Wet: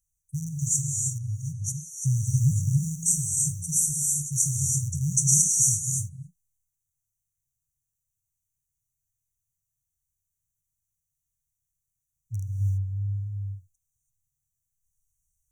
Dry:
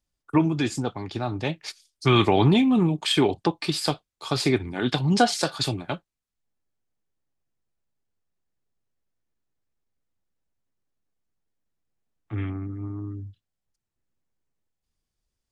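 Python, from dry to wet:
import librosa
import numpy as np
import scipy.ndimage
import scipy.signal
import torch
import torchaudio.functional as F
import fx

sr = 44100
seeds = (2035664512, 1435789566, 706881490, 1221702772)

y = fx.rattle_buzz(x, sr, strikes_db=-25.0, level_db=-20.0)
y = fx.rev_gated(y, sr, seeds[0], gate_ms=360, shape='rising', drr_db=0.5)
y = fx.dynamic_eq(y, sr, hz=6100.0, q=0.71, threshold_db=-41.0, ratio=4.0, max_db=7)
y = fx.brickwall_bandstop(y, sr, low_hz=160.0, high_hz=5700.0)
y = fx.high_shelf(y, sr, hz=2900.0, db=9.5)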